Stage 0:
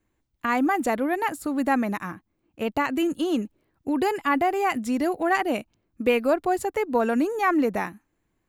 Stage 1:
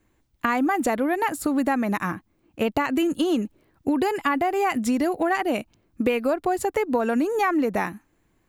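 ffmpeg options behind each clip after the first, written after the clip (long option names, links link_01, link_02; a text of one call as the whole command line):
ffmpeg -i in.wav -af "acompressor=threshold=-27dB:ratio=6,volume=7.5dB" out.wav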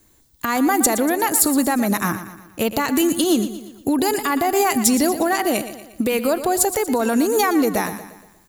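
ffmpeg -i in.wav -filter_complex "[0:a]alimiter=limit=-17dB:level=0:latency=1:release=146,aexciter=amount=2.4:drive=8.6:freq=3600,asplit=2[link_01][link_02];[link_02]aecho=0:1:118|236|354|472|590:0.251|0.121|0.0579|0.0278|0.0133[link_03];[link_01][link_03]amix=inputs=2:normalize=0,volume=6dB" out.wav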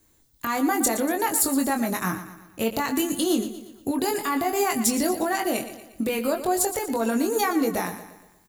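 ffmpeg -i in.wav -filter_complex "[0:a]asplit=2[link_01][link_02];[link_02]adelay=22,volume=-5dB[link_03];[link_01][link_03]amix=inputs=2:normalize=0,volume=-6.5dB" out.wav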